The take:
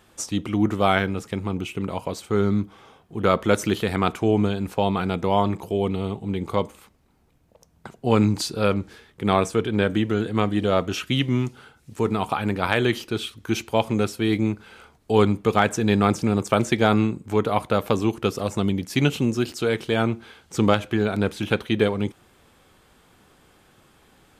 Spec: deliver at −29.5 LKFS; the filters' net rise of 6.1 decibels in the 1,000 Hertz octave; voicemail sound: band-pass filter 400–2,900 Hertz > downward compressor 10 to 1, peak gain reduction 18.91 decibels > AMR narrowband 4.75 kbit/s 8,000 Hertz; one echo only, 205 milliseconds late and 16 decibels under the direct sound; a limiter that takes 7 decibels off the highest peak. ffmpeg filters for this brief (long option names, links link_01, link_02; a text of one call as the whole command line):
ffmpeg -i in.wav -af "equalizer=frequency=1000:width_type=o:gain=8.5,alimiter=limit=-6.5dB:level=0:latency=1,highpass=400,lowpass=2900,aecho=1:1:205:0.158,acompressor=threshold=-32dB:ratio=10,volume=10.5dB" -ar 8000 -c:a libopencore_amrnb -b:a 4750 out.amr